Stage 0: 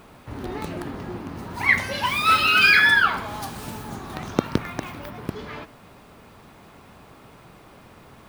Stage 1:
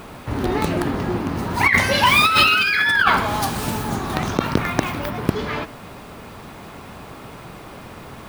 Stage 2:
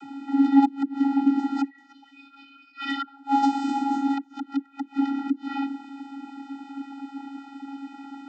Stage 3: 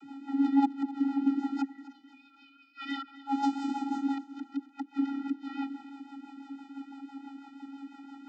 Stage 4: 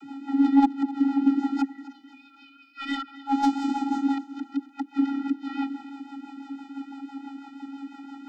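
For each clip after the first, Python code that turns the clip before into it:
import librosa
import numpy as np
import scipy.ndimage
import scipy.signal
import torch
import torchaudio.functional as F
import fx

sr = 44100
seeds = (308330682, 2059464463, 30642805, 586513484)

y1 = fx.over_compress(x, sr, threshold_db=-22.0, ratio=-1.0)
y1 = y1 * 10.0 ** (7.0 / 20.0)
y2 = fx.chorus_voices(y1, sr, voices=2, hz=0.26, base_ms=19, depth_ms=4.6, mix_pct=35)
y2 = fx.gate_flip(y2, sr, shuts_db=-12.0, range_db=-31)
y2 = fx.vocoder(y2, sr, bands=32, carrier='square', carrier_hz=276.0)
y2 = y2 * 10.0 ** (5.0 / 20.0)
y3 = fx.rotary(y2, sr, hz=6.0)
y3 = fx.echo_feedback(y3, sr, ms=258, feedback_pct=41, wet_db=-17.0)
y3 = y3 * 10.0 ** (-5.0 / 20.0)
y4 = fx.tracing_dist(y3, sr, depth_ms=0.025)
y4 = y4 * 10.0 ** (6.0 / 20.0)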